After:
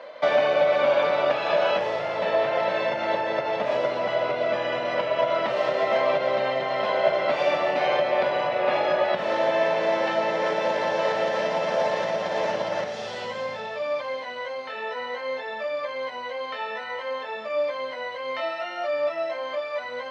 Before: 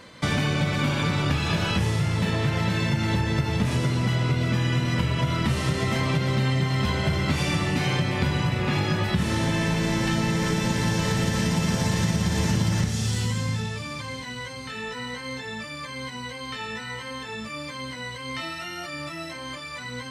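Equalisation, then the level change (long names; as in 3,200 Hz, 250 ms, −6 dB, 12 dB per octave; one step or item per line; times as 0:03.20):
high-pass with resonance 600 Hz, resonance Q 7
high-frequency loss of the air 250 metres
+2.0 dB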